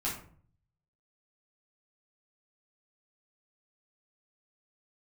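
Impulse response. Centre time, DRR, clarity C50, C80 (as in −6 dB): 33 ms, −8.0 dB, 6.0 dB, 10.0 dB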